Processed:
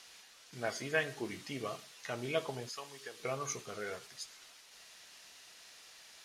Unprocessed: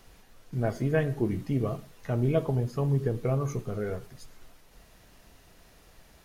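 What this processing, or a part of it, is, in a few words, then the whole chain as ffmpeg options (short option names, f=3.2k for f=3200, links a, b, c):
piezo pickup straight into a mixer: -filter_complex "[0:a]lowpass=5.2k,aderivative,asettb=1/sr,asplit=3[a][b][c];[a]atrim=end=2.694[d];[b]atrim=start=2.69:end=3.2,asetpts=PTS-STARTPTS,afade=t=in:d=0.004:c=qsin,afade=t=out:st=0.506:d=0.004:c=qsin,highpass=f=1.3k:p=1[e];[c]atrim=start=3.196[f];[d][e]acrossfade=d=0.004:c1=hsin:c2=qsin[g];[g][f]acrossfade=d=0.004:c1=qsin:c2=hsin,volume=14.5dB"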